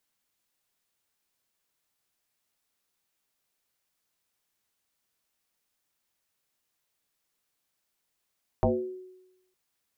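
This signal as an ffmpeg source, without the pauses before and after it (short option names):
-f lavfi -i "aevalsrc='0.126*pow(10,-3*t/0.94)*sin(2*PI*370*t+3.8*pow(10,-3*t/0.55)*sin(2*PI*0.37*370*t))':d=0.91:s=44100"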